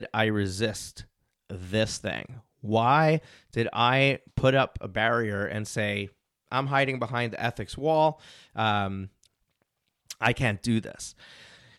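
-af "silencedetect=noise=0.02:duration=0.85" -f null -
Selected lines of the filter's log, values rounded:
silence_start: 9.05
silence_end: 10.11 | silence_duration: 1.05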